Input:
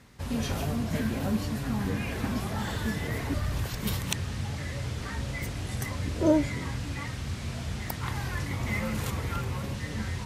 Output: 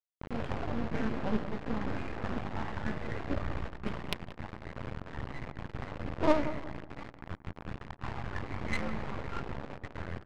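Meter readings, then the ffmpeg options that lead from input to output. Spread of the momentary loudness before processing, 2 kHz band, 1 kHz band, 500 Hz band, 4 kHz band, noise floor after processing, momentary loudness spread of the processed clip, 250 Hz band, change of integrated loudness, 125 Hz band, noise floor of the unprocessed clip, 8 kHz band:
6 LU, -5.0 dB, -1.0 dB, -2.5 dB, -9.5 dB, -54 dBFS, 11 LU, -6.0 dB, -6.0 dB, -9.5 dB, -37 dBFS, -19.0 dB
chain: -filter_complex "[0:a]lowpass=f=3k:w=0.5412,lowpass=f=3k:w=1.3066,aemphasis=mode=production:type=75fm,agate=range=-33dB:threshold=-27dB:ratio=3:detection=peak,lowshelf=f=280:g=-6,asplit=2[a][b];[b]acompressor=threshold=-45dB:ratio=5,volume=-1dB[c];[a][c]amix=inputs=2:normalize=0,flanger=delay=1:depth=4:regen=-35:speed=0.38:shape=sinusoidal,aresample=11025,acrusher=bits=4:dc=4:mix=0:aa=0.000001,aresample=44100,adynamicsmooth=sensitivity=4.5:basefreq=790,asplit=2[d][e];[e]adelay=179,lowpass=f=1.1k:p=1,volume=-11.5dB,asplit=2[f][g];[g]adelay=179,lowpass=f=1.1k:p=1,volume=0.35,asplit=2[h][i];[i]adelay=179,lowpass=f=1.1k:p=1,volume=0.35,asplit=2[j][k];[k]adelay=179,lowpass=f=1.1k:p=1,volume=0.35[l];[d][f][h][j][l]amix=inputs=5:normalize=0,volume=7.5dB"

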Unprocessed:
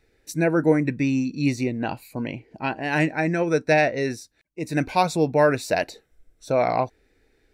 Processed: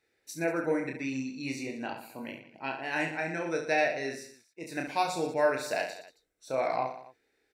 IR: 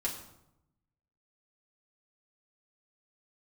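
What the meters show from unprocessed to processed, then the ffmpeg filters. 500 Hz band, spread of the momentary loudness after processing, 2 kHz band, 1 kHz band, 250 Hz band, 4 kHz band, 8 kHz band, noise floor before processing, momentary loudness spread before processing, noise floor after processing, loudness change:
-8.5 dB, 15 LU, -6.0 dB, -7.0 dB, -12.0 dB, -6.0 dB, -6.0 dB, -66 dBFS, 12 LU, -75 dBFS, -8.5 dB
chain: -filter_complex "[0:a]highpass=f=520:p=1,asplit=2[a][b];[b]aecho=0:1:30|69|119.7|185.6|271.3:0.631|0.398|0.251|0.158|0.1[c];[a][c]amix=inputs=2:normalize=0,volume=-8dB"

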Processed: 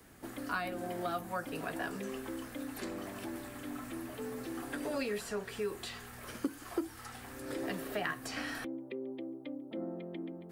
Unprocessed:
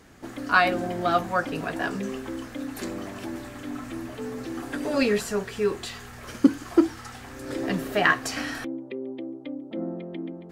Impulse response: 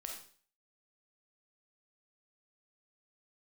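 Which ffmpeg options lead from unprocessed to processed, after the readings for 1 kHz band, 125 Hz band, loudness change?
-13.0 dB, -11.0 dB, -12.5 dB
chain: -filter_complex "[0:a]acrossover=split=140|300|6700[a][b][c][d];[a]acompressor=threshold=-49dB:ratio=4[e];[b]acompressor=threshold=-41dB:ratio=4[f];[c]acompressor=threshold=-29dB:ratio=4[g];[d]acompressor=threshold=-57dB:ratio=4[h];[e][f][g][h]amix=inputs=4:normalize=0,aexciter=amount=4.1:drive=2.7:freq=8.7k,volume=-6dB"

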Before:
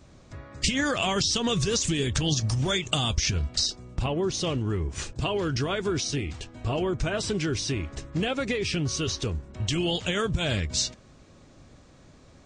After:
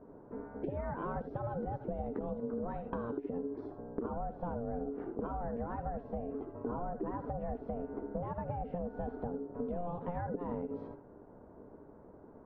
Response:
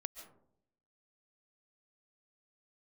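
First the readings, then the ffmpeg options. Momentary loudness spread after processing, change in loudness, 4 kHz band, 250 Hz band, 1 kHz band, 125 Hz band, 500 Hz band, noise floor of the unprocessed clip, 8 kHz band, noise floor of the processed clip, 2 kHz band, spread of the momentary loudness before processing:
11 LU, -12.5 dB, under -40 dB, -9.5 dB, -5.0 dB, -15.0 dB, -8.0 dB, -53 dBFS, under -40 dB, -56 dBFS, -22.5 dB, 7 LU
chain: -filter_complex "[0:a]lowpass=f=1k:w=0.5412,lowpass=f=1k:w=1.3066[a];[1:a]atrim=start_sample=2205,afade=t=out:st=0.2:d=0.01,atrim=end_sample=9261,asetrate=79380,aresample=44100[b];[a][b]afir=irnorm=-1:irlink=0,acompressor=threshold=-41dB:ratio=10,aeval=exprs='val(0)*sin(2*PI*350*n/s)':c=same,volume=9.5dB"

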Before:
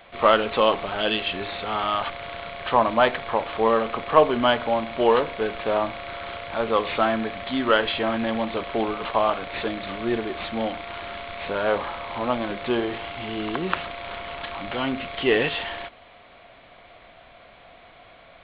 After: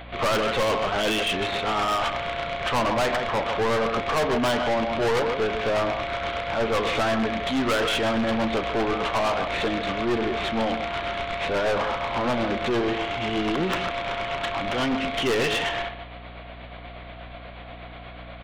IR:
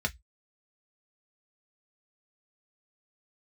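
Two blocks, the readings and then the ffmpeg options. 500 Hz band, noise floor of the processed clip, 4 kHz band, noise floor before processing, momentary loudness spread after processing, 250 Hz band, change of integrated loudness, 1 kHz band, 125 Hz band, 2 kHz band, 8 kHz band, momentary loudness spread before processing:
-1.0 dB, -41 dBFS, +1.5 dB, -50 dBFS, 18 LU, +1.0 dB, 0.0 dB, -1.0 dB, +4.5 dB, +1.5 dB, n/a, 13 LU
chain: -filter_complex "[0:a]asplit=2[a][b];[b]adelay=151.6,volume=-12dB,highshelf=f=4k:g=-3.41[c];[a][c]amix=inputs=2:normalize=0,tremolo=f=8.3:d=0.42,asplit=2[d][e];[e]aeval=exprs='(mod(8.91*val(0)+1,2)-1)/8.91':c=same,volume=-11dB[f];[d][f]amix=inputs=2:normalize=0,aeval=exprs='val(0)+0.00398*(sin(2*PI*60*n/s)+sin(2*PI*2*60*n/s)/2+sin(2*PI*3*60*n/s)/3+sin(2*PI*4*60*n/s)/4+sin(2*PI*5*60*n/s)/5)':c=same,aeval=exprs='(tanh(22.4*val(0)+0.15)-tanh(0.15))/22.4':c=same,volume=6.5dB"

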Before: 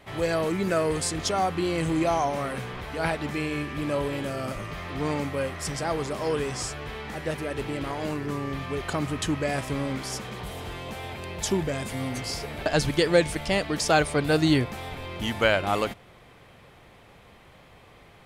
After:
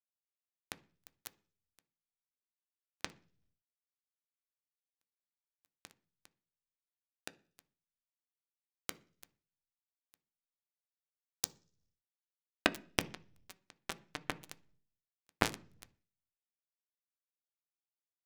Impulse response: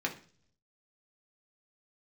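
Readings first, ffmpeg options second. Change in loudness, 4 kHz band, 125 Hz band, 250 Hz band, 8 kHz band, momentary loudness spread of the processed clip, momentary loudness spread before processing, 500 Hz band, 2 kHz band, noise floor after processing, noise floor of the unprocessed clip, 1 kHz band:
-13.5 dB, -14.0 dB, -25.5 dB, -22.5 dB, -14.0 dB, 24 LU, 12 LU, -24.5 dB, -15.0 dB, under -85 dBFS, -53 dBFS, -19.0 dB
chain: -filter_complex "[0:a]acompressor=threshold=-29dB:ratio=5,acrusher=bits=2:mix=0:aa=0.5,asplit=2[a][b];[1:a]atrim=start_sample=2205,lowshelf=f=290:g=10[c];[b][c]afir=irnorm=-1:irlink=0,volume=-12.5dB[d];[a][d]amix=inputs=2:normalize=0,volume=18dB"

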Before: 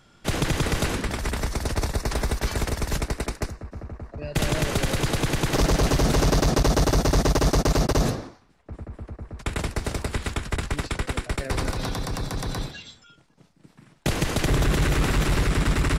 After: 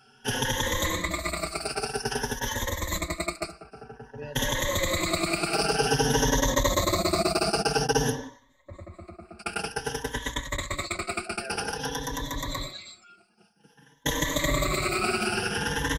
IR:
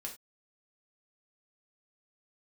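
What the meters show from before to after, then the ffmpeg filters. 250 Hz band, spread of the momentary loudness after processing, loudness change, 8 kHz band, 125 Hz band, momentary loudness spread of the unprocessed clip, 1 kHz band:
-4.5 dB, 14 LU, -2.5 dB, +1.5 dB, -9.0 dB, 15 LU, +0.5 dB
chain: -filter_complex "[0:a]afftfilt=real='re*pow(10,19/40*sin(2*PI*(1.1*log(max(b,1)*sr/1024/100)/log(2)-(0.52)*(pts-256)/sr)))':imag='im*pow(10,19/40*sin(2*PI*(1.1*log(max(b,1)*sr/1024/100)/log(2)-(0.52)*(pts-256)/sr)))':win_size=1024:overlap=0.75,lowshelf=f=210:g=-12,asplit=2[a][b];[b]adelay=4.8,afreqshift=-0.48[c];[a][c]amix=inputs=2:normalize=1"

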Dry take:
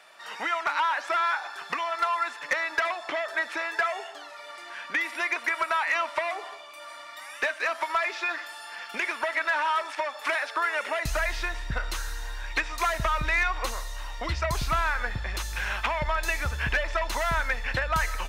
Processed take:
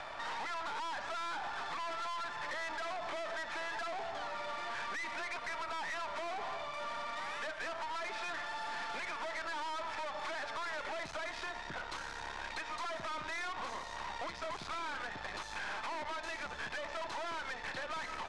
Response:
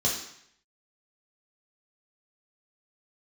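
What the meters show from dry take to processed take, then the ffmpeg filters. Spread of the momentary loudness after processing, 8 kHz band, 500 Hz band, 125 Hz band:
3 LU, -11.5 dB, -10.0 dB, -21.5 dB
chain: -filter_complex "[0:a]alimiter=level_in=2.5dB:limit=-24dB:level=0:latency=1:release=396,volume=-2.5dB,equalizer=f=850:t=o:w=1.3:g=9.5,volume=36dB,asoftclip=hard,volume=-36dB,acrossover=split=150 5800:gain=0.0891 1 0.2[a][b][c];[a][b][c]amix=inputs=3:normalize=0,acompressor=threshold=-50dB:ratio=2,bandreject=f=2.8k:w=15,aeval=exprs='0.0168*(cos(1*acos(clip(val(0)/0.0168,-1,1)))-cos(1*PI/2))+0.00168*(cos(6*acos(clip(val(0)/0.0168,-1,1)))-cos(6*PI/2))':c=same,lowpass=f=9.8k:w=0.5412,lowpass=f=9.8k:w=1.3066,volume=5.5dB"

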